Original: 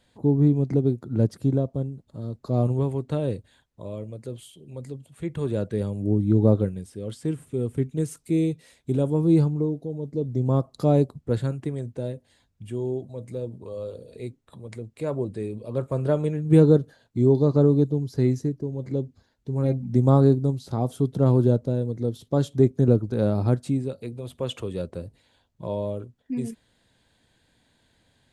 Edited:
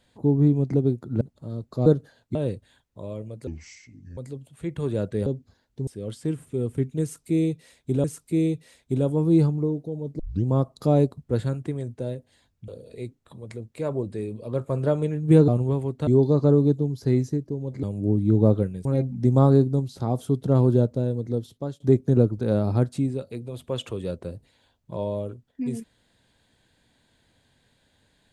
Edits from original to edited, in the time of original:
1.21–1.93 s: delete
2.58–3.17 s: swap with 16.70–17.19 s
4.29–4.76 s: speed 67%
5.85–6.87 s: swap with 18.95–19.56 s
8.02–9.04 s: loop, 2 plays
10.17 s: tape start 0.25 s
12.66–13.90 s: delete
22.05–22.51 s: fade out, to -22 dB

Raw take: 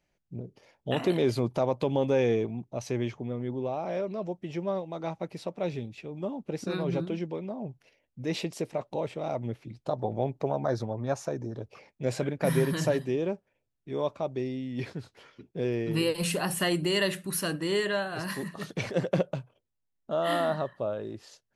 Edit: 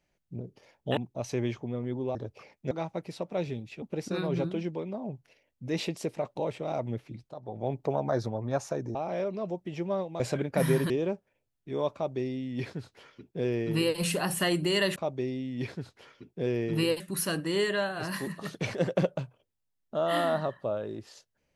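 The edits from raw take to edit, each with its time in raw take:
0.97–2.54 s: delete
3.72–4.97 s: swap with 11.51–12.07 s
6.08–6.38 s: delete
9.85–10.31 s: fade in quadratic, from -13.5 dB
12.77–13.10 s: delete
14.14–16.18 s: copy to 17.16 s

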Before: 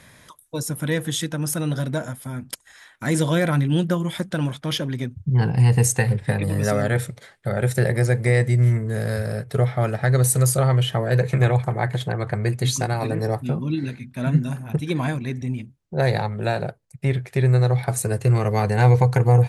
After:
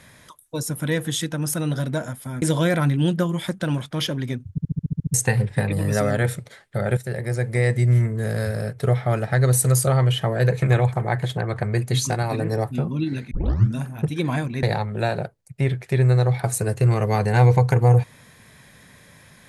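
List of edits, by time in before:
2.42–3.13 s: delete
5.22 s: stutter in place 0.07 s, 9 plays
7.68–8.58 s: fade in, from -12 dB
14.02 s: tape start 0.44 s
15.34–16.07 s: delete

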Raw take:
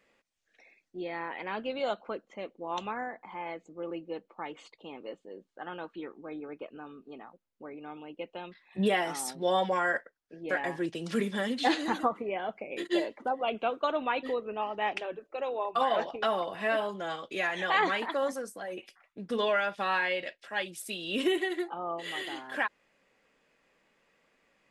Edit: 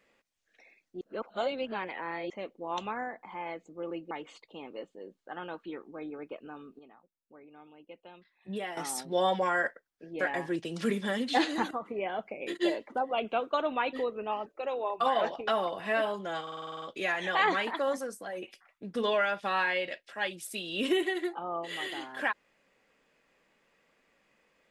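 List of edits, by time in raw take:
1.01–2.30 s: reverse
4.11–4.41 s: delete
7.09–9.07 s: gain -10 dB
12.01–12.27 s: fade in, from -13 dB
14.76–15.21 s: delete
17.17 s: stutter 0.05 s, 9 plays

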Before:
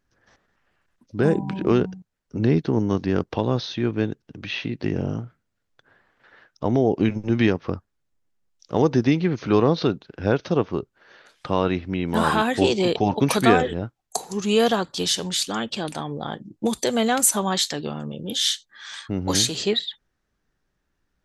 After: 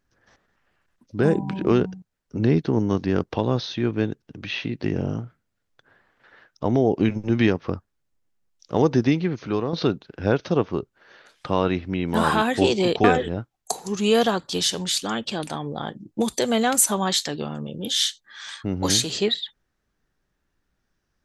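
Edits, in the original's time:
9.02–9.73 s: fade out, to -10 dB
13.04–13.49 s: delete

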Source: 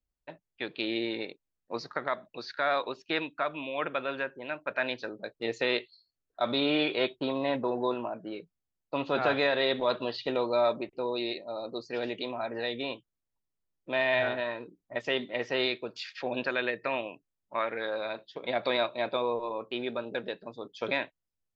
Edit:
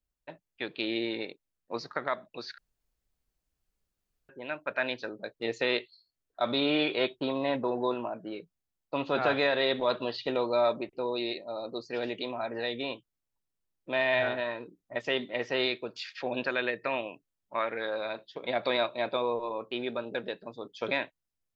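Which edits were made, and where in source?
2.58–4.29 s: room tone

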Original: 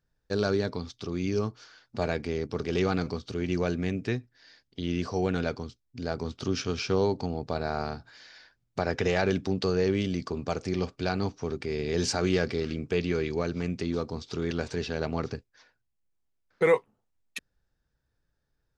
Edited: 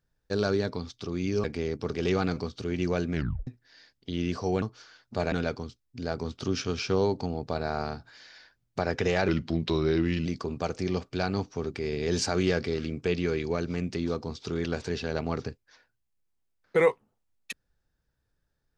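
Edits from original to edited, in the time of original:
1.44–2.14 s: move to 5.32 s
3.83 s: tape stop 0.34 s
9.28–10.12 s: speed 86%

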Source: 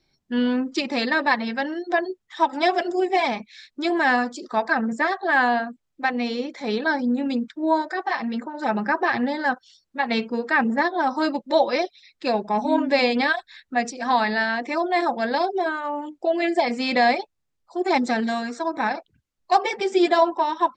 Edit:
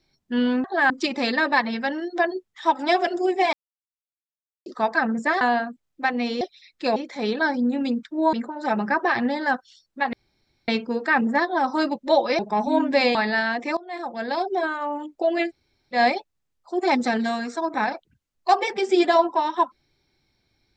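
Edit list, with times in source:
3.27–4.40 s: mute
5.15–5.41 s: move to 0.64 s
7.78–8.31 s: delete
10.11 s: insert room tone 0.55 s
11.82–12.37 s: move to 6.41 s
13.13–14.18 s: delete
14.80–15.66 s: fade in, from -22.5 dB
16.50–16.99 s: room tone, crossfade 0.10 s

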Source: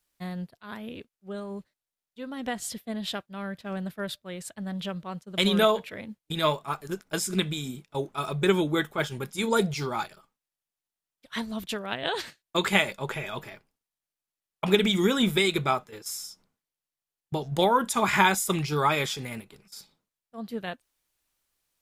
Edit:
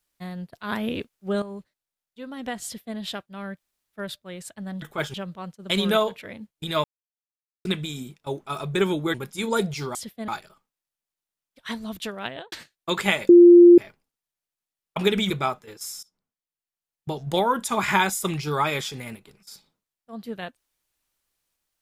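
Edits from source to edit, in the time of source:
0.53–1.42 s: gain +11 dB
2.64–2.97 s: copy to 9.95 s
3.56–3.96 s: room tone, crossfade 0.06 s
6.52–7.33 s: mute
8.82–9.14 s: move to 4.82 s
11.94–12.19 s: studio fade out
12.96–13.45 s: bleep 348 Hz -6.5 dBFS
14.97–15.55 s: delete
16.28–17.38 s: fade in, from -20 dB

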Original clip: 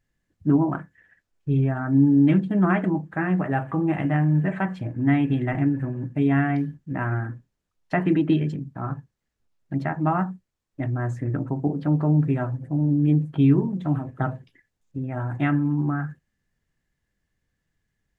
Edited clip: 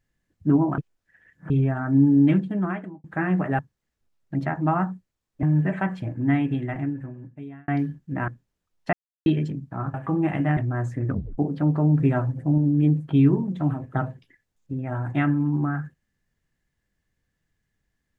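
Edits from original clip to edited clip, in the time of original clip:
0.78–1.50 s: reverse
2.25–3.04 s: fade out
3.59–4.22 s: swap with 8.98–10.82 s
4.88–6.47 s: fade out
7.07–7.32 s: delete
7.97–8.30 s: mute
11.34 s: tape stop 0.29 s
12.25–12.83 s: gain +3 dB

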